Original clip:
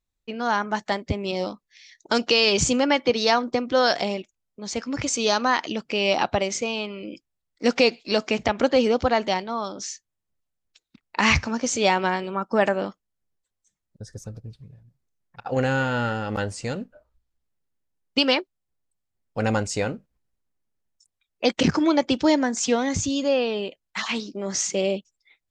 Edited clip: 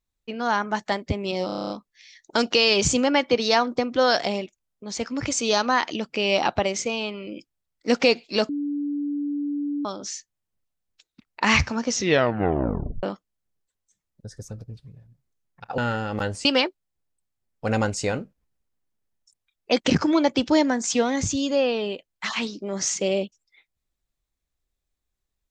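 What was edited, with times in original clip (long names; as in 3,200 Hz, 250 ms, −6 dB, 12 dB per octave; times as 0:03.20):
0:01.46: stutter 0.03 s, 9 plays
0:08.25–0:09.61: beep over 289 Hz −24 dBFS
0:11.62: tape stop 1.17 s
0:15.54–0:15.95: remove
0:16.62–0:18.18: remove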